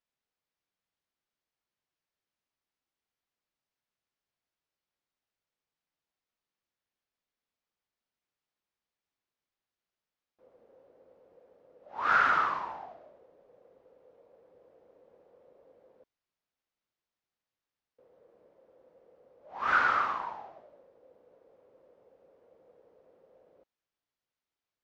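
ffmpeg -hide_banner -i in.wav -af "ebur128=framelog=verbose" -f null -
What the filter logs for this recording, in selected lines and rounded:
Integrated loudness:
  I:         -27.8 LUFS
  Threshold: -45.6 LUFS
Loudness range:
  LRA:        11.8 LU
  Threshold: -56.3 LUFS
  LRA low:   -43.8 LUFS
  LRA high:  -32.0 LUFS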